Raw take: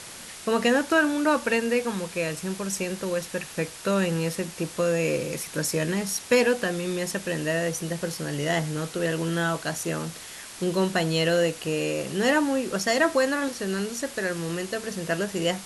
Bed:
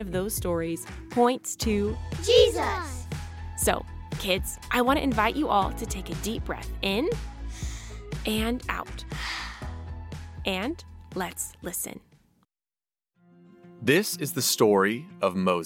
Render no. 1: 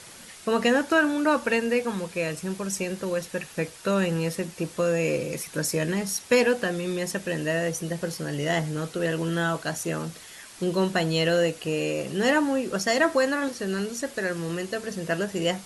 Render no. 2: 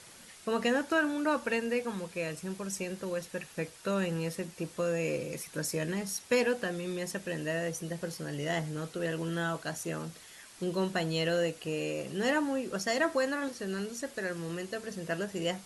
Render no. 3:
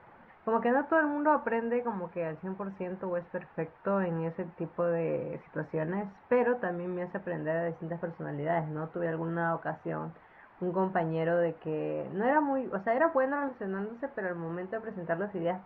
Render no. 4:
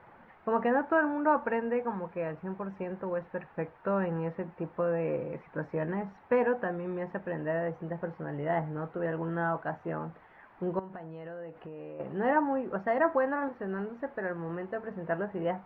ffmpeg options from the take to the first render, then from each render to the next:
ffmpeg -i in.wav -af "afftdn=noise_reduction=6:noise_floor=-42" out.wav
ffmpeg -i in.wav -af "volume=-7dB" out.wav
ffmpeg -i in.wav -af "lowpass=frequency=1800:width=0.5412,lowpass=frequency=1800:width=1.3066,equalizer=frequency=850:width=2.1:gain=9.5" out.wav
ffmpeg -i in.wav -filter_complex "[0:a]asettb=1/sr,asplit=3[link_01][link_02][link_03];[link_01]atrim=end=10.794[link_04];[link_02]atrim=start=10.79:end=12,asetpts=PTS-STARTPTS,afade=type=in:duration=0.004:curve=qsin,afade=type=out:start_time=1.206:duration=0.004:curve=qsin,acompressor=threshold=-40dB:ratio=6:attack=3.2:release=140:knee=1:detection=peak[link_05];[link_03]atrim=start=11.996[link_06];[link_04][link_05]acrossfade=duration=0.004:curve1=hsin:curve2=qsin[link_07];[link_07][link_06]acrossfade=duration=0.004:curve1=qsin:curve2=hsin" out.wav

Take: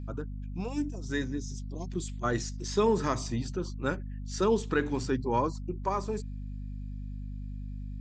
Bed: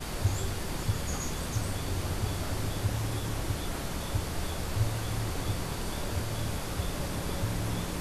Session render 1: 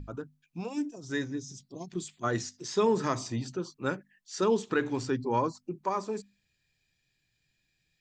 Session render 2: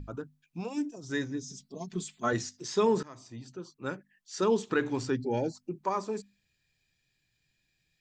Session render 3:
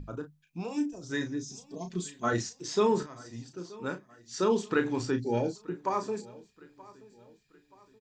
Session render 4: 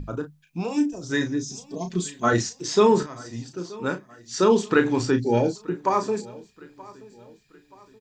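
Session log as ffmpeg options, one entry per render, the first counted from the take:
ffmpeg -i in.wav -af "bandreject=frequency=50:width_type=h:width=6,bandreject=frequency=100:width_type=h:width=6,bandreject=frequency=150:width_type=h:width=6,bandreject=frequency=200:width_type=h:width=6,bandreject=frequency=250:width_type=h:width=6" out.wav
ffmpeg -i in.wav -filter_complex "[0:a]asettb=1/sr,asplit=3[link_01][link_02][link_03];[link_01]atrim=end=1.424[link_04];[link_02]atrim=start=1.42:end=2.33,asetpts=PTS-STARTPTS,afade=type=in:duration=0.004:curve=qsin,afade=type=out:start_time=0.906:duration=0.004:curve=qsin,aecho=1:1:4.6:0.65,atrim=end_sample=40131[link_05];[link_03]atrim=start=2.326[link_06];[link_04][link_05]acrossfade=duration=0.004:curve1=hsin:curve2=qsin[link_07];[link_07][link_06]acrossfade=duration=0.004:curve1=qsin:curve2=hsin,asplit=3[link_08][link_09][link_10];[link_08]afade=type=out:start_time=5.15:duration=0.02[link_11];[link_09]asuperstop=centerf=1100:order=8:qfactor=1.9,afade=type=in:start_time=5.15:duration=0.02,afade=type=out:start_time=5.55:duration=0.02[link_12];[link_10]afade=type=in:start_time=5.55:duration=0.02[link_13];[link_11][link_12][link_13]amix=inputs=3:normalize=0,asplit=2[link_14][link_15];[link_14]atrim=end=3.03,asetpts=PTS-STARTPTS,afade=type=out:start_time=3.026:duration=0.004:curve=hsin:silence=0.0707946[link_16];[link_15]atrim=start=3.03,asetpts=PTS-STARTPTS,afade=type=in:duration=1.5:silence=0.0707946[link_17];[link_16][link_17]concat=n=2:v=0:a=1" out.wav
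ffmpeg -i in.wav -filter_complex "[0:a]asplit=2[link_01][link_02];[link_02]adelay=34,volume=-8dB[link_03];[link_01][link_03]amix=inputs=2:normalize=0,aecho=1:1:927|1854|2781:0.0841|0.0362|0.0156" out.wav
ffmpeg -i in.wav -af "volume=8dB" out.wav

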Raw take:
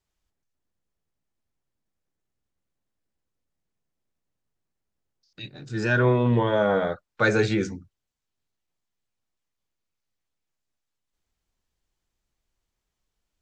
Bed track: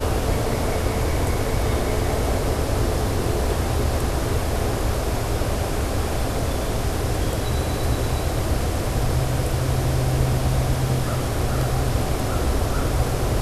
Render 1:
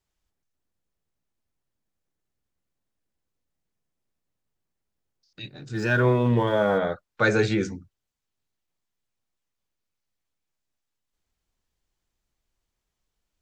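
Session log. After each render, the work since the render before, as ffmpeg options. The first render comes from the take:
ffmpeg -i in.wav -filter_complex "[0:a]asettb=1/sr,asplit=3[link_01][link_02][link_03];[link_01]atrim=end=5.734[link_04];[link_02]atrim=start=5.73:end=6.78,asetpts=PTS-STARTPTS,afade=type=in:duration=0.004:curve=qsin,afade=type=out:start_time=1.046:duration=0.004:curve=qsin,aeval=exprs='sgn(val(0))*max(abs(val(0))-0.00335,0)':channel_layout=same[link_05];[link_03]atrim=start=6.776[link_06];[link_04][link_05]acrossfade=duration=0.004:curve1=hsin:curve2=qsin[link_07];[link_07][link_06]acrossfade=duration=0.004:curve1=qsin:curve2=hsin" out.wav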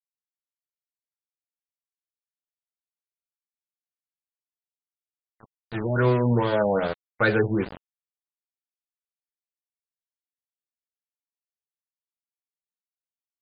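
ffmpeg -i in.wav -af "aeval=exprs='val(0)*gte(abs(val(0)),0.0355)':channel_layout=same,afftfilt=real='re*lt(b*sr/1024,930*pow(5000/930,0.5+0.5*sin(2*PI*2.5*pts/sr)))':imag='im*lt(b*sr/1024,930*pow(5000/930,0.5+0.5*sin(2*PI*2.5*pts/sr)))':win_size=1024:overlap=0.75" out.wav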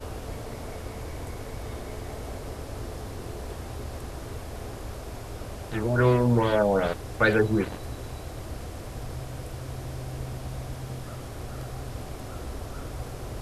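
ffmpeg -i in.wav -i bed.wav -filter_complex "[1:a]volume=-14.5dB[link_01];[0:a][link_01]amix=inputs=2:normalize=0" out.wav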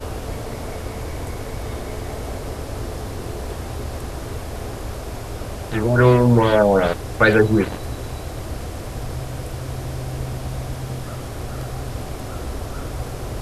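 ffmpeg -i in.wav -af "volume=7.5dB,alimiter=limit=-2dB:level=0:latency=1" out.wav

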